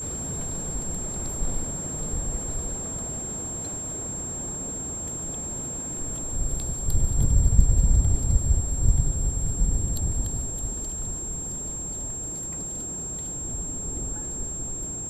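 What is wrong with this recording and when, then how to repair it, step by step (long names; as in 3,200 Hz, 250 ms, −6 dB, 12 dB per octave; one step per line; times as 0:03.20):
whistle 7,500 Hz −31 dBFS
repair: notch filter 7,500 Hz, Q 30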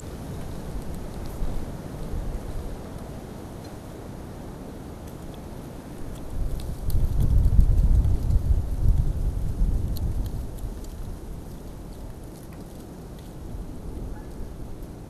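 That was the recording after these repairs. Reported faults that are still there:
none of them is left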